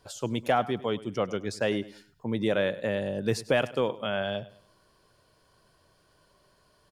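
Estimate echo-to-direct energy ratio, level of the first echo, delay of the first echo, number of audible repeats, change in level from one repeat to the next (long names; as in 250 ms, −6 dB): −17.5 dB, −18.0 dB, 101 ms, 2, −9.0 dB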